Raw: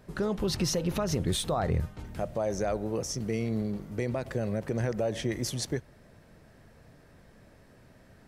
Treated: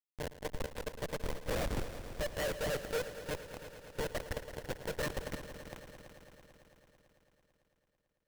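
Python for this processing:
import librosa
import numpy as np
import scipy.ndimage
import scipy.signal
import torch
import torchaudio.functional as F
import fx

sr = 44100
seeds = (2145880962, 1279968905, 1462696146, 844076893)

p1 = fx.bin_expand(x, sr, power=2.0)
p2 = fx.fold_sine(p1, sr, drive_db=13, ceiling_db=-20.5)
p3 = fx.lpc_monotone(p2, sr, seeds[0], pitch_hz=150.0, order=10)
p4 = fx.filter_lfo_notch(p3, sr, shape='saw_up', hz=4.4, low_hz=220.0, high_hz=2400.0, q=1.2)
p5 = fx.formant_cascade(p4, sr, vowel='e')
p6 = fx.low_shelf(p5, sr, hz=65.0, db=4.0)
p7 = fx.schmitt(p6, sr, flips_db=-38.5)
p8 = p7 + fx.echo_heads(p7, sr, ms=111, heads='all three', feedback_pct=69, wet_db=-14, dry=0)
p9 = fx.upward_expand(p8, sr, threshold_db=-45.0, expansion=1.5)
y = F.gain(torch.from_numpy(p9), 7.5).numpy()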